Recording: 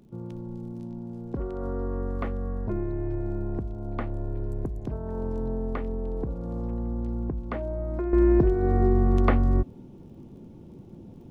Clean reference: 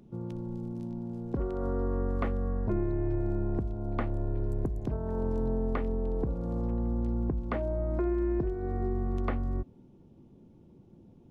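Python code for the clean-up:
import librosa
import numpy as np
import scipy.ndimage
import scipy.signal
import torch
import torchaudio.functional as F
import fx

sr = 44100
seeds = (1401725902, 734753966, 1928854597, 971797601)

y = fx.fix_declick_ar(x, sr, threshold=6.5)
y = fx.fix_level(y, sr, at_s=8.13, step_db=-10.0)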